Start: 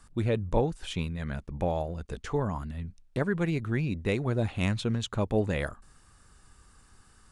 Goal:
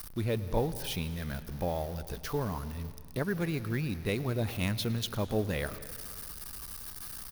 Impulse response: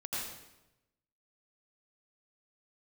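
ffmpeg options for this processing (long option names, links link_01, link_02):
-filter_complex "[0:a]aeval=exprs='val(0)+0.5*0.01*sgn(val(0))':channel_layout=same,asplit=2[link_01][link_02];[link_02]adelay=110.8,volume=-20dB,highshelf=frequency=4000:gain=-2.49[link_03];[link_01][link_03]amix=inputs=2:normalize=0,asplit=2[link_04][link_05];[1:a]atrim=start_sample=2205,asetrate=22491,aresample=44100[link_06];[link_05][link_06]afir=irnorm=-1:irlink=0,volume=-22.5dB[link_07];[link_04][link_07]amix=inputs=2:normalize=0,aexciter=amount=1:drive=5.5:freq=4200,highshelf=frequency=5700:gain=10.5,volume=-5dB"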